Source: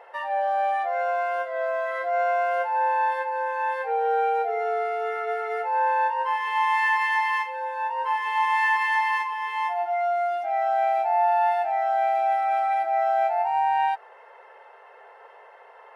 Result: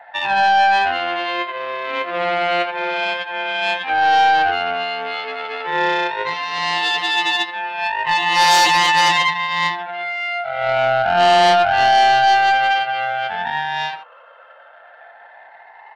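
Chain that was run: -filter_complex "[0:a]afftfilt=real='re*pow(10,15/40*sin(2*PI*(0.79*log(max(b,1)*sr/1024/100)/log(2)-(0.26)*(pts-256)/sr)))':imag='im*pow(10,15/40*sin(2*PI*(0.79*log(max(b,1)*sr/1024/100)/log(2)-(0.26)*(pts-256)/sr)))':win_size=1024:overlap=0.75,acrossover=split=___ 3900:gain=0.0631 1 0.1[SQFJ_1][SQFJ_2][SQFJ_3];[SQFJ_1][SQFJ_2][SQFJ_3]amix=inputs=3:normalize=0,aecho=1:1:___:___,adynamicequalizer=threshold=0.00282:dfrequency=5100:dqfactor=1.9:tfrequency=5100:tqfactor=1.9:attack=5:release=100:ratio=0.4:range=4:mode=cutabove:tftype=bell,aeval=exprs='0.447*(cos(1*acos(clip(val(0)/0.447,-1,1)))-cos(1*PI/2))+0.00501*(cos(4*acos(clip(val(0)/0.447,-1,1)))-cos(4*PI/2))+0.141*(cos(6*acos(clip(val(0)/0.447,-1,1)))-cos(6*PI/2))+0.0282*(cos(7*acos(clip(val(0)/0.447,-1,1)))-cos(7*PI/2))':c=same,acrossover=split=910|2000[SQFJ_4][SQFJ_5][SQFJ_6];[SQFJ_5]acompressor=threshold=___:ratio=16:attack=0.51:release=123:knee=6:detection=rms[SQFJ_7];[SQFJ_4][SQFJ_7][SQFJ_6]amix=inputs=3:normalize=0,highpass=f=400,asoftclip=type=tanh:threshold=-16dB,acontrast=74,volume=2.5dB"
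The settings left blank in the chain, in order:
540, 83, 0.376, -36dB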